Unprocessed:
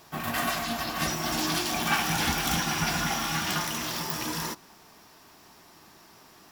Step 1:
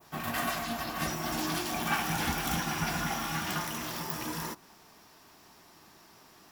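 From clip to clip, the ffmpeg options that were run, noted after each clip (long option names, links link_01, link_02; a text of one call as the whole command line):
ffmpeg -i in.wav -af "adynamicequalizer=threshold=0.00708:dfrequency=4500:dqfactor=0.71:tfrequency=4500:tqfactor=0.71:attack=5:release=100:ratio=0.375:range=2.5:mode=cutabove:tftype=bell,volume=-3dB" out.wav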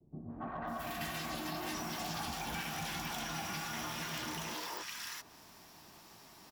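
ffmpeg -i in.wav -filter_complex "[0:a]acrossover=split=380|1400[link_01][link_02][link_03];[link_02]adelay=280[link_04];[link_03]adelay=670[link_05];[link_01][link_04][link_05]amix=inputs=3:normalize=0,acrossover=split=200|770|2300[link_06][link_07][link_08][link_09];[link_08]asoftclip=type=tanh:threshold=-36.5dB[link_10];[link_06][link_07][link_10][link_09]amix=inputs=4:normalize=0,acrossover=split=340|6600[link_11][link_12][link_13];[link_11]acompressor=threshold=-47dB:ratio=4[link_14];[link_12]acompressor=threshold=-40dB:ratio=4[link_15];[link_13]acompressor=threshold=-52dB:ratio=4[link_16];[link_14][link_15][link_16]amix=inputs=3:normalize=0,volume=1dB" out.wav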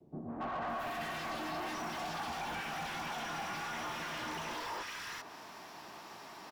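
ffmpeg -i in.wav -filter_complex "[0:a]asplit=2[link_01][link_02];[link_02]highpass=frequency=720:poles=1,volume=24dB,asoftclip=type=tanh:threshold=-25.5dB[link_03];[link_01][link_03]amix=inputs=2:normalize=0,lowpass=frequency=1400:poles=1,volume=-6dB,volume=-3.5dB" out.wav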